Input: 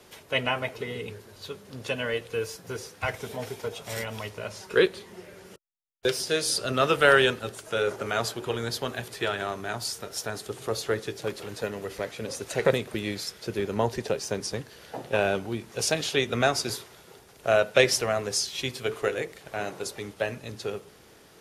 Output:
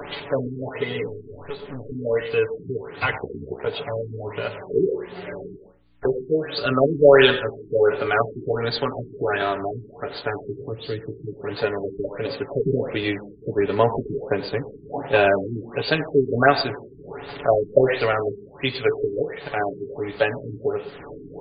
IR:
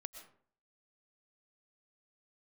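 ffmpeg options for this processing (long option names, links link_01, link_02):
-filter_complex "[0:a]acompressor=mode=upward:threshold=-30dB:ratio=2.5,aeval=exprs='val(0)+0.000501*(sin(2*PI*60*n/s)+sin(2*PI*2*60*n/s)/2+sin(2*PI*3*60*n/s)/3+sin(2*PI*4*60*n/s)/4+sin(2*PI*5*60*n/s)/5)':channel_layout=same,asplit=2[link_01][link_02];[1:a]atrim=start_sample=2205,asetrate=61740,aresample=44100,adelay=7[link_03];[link_02][link_03]afir=irnorm=-1:irlink=0,volume=6dB[link_04];[link_01][link_04]amix=inputs=2:normalize=0,asettb=1/sr,asplit=3[link_05][link_06][link_07];[link_05]atrim=end=1.084[link_08];[link_06]atrim=start=1.08:end=1.92,asetpts=PTS-STARTPTS,afade=type=in:duration=0.004:curve=qsin,afade=type=out:start_time=0.836:duration=0.004:curve=qsin,aeval=exprs='(tanh(35.5*val(0)+0.55)-tanh(0.55))/35.5':channel_layout=same[link_09];[link_07]atrim=start=1.916[link_10];[link_08][link_09]acrossfade=duration=0.004:curve1=hsin:curve2=qsin[link_11];[link_11][link_10]acrossfade=duration=0.004:curve1=qsin:curve2=hsin,asettb=1/sr,asplit=3[link_12][link_13][link_14];[link_12]atrim=end=10.614[link_15];[link_13]atrim=start=10.61:end=11.44,asetpts=PTS-STARTPTS,afade=type=in:duration=0.004:curve=qsin,afade=type=out:start_time=0.826:duration=0.004:curve=qsin,acrossover=split=320|3000[link_16][link_17][link_18];[link_17]acompressor=threshold=-47dB:ratio=6[link_19];[link_16][link_19][link_18]amix=inputs=3:normalize=0[link_20];[link_14]atrim=start=11.436[link_21];[link_15][link_20]acrossfade=duration=0.004:curve1=hsin:curve2=qsin[link_22];[link_22][link_21]acrossfade=duration=0.004:curve1=qsin:curve2=hsin,equalizer=frequency=130:width_type=o:width=0.7:gain=-4.5,asettb=1/sr,asplit=3[link_23][link_24][link_25];[link_23]atrim=end=3.174[link_26];[link_24]atrim=start=3.17:end=3.66,asetpts=PTS-STARTPTS,afade=type=in:duration=0.004:curve=qsin,afade=type=out:start_time=0.486:duration=0.004:curve=qsin,aeval=exprs='val(0)*sin(2*PI*32*n/s)':channel_layout=same[link_27];[link_25]atrim=start=3.656[link_28];[link_26][link_27]acrossfade=duration=0.004:curve1=hsin:curve2=qsin[link_29];[link_29][link_28]acrossfade=duration=0.004:curve1=qsin:curve2=hsin,afftfilt=real='re*lt(b*sr/1024,410*pow(4900/410,0.5+0.5*sin(2*PI*1.4*pts/sr)))':imag='im*lt(b*sr/1024,410*pow(4900/410,0.5+0.5*sin(2*PI*1.4*pts/sr)))':win_size=1024:overlap=0.75,volume=5.5dB"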